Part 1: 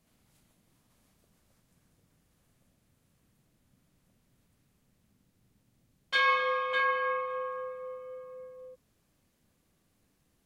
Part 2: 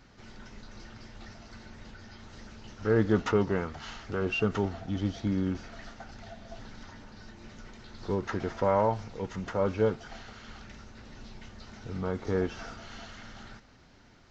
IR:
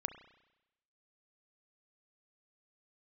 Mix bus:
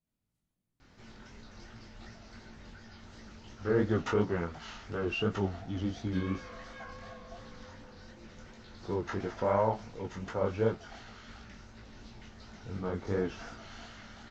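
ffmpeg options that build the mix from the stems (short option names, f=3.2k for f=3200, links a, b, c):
-filter_complex "[0:a]lowshelf=f=260:g=8.5,volume=-18.5dB[a];[1:a]adelay=800,volume=0dB[b];[a][b]amix=inputs=2:normalize=0,flanger=delay=17:depth=6.7:speed=2.8"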